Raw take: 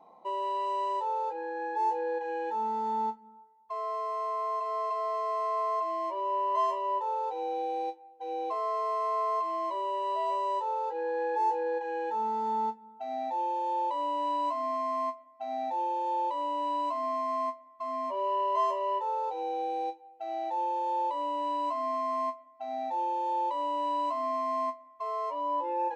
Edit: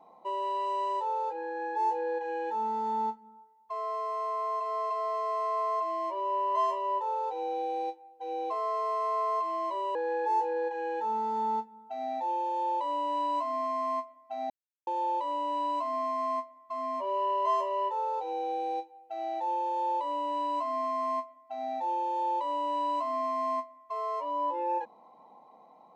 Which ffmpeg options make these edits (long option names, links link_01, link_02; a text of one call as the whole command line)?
ffmpeg -i in.wav -filter_complex "[0:a]asplit=4[link_01][link_02][link_03][link_04];[link_01]atrim=end=9.952[link_05];[link_02]atrim=start=11.048:end=15.6,asetpts=PTS-STARTPTS,afade=type=out:start_time=4.548:duration=0.004:curve=hsin[link_06];[link_03]atrim=start=15.6:end=15.97,asetpts=PTS-STARTPTS,volume=0[link_07];[link_04]atrim=start=15.97,asetpts=PTS-STARTPTS,afade=type=in:duration=0.004:curve=hsin[link_08];[link_06][link_07][link_08]concat=n=3:v=0:a=1[link_09];[link_05][link_09]acrossfade=duration=0.004:curve1=hsin:curve2=hsin" out.wav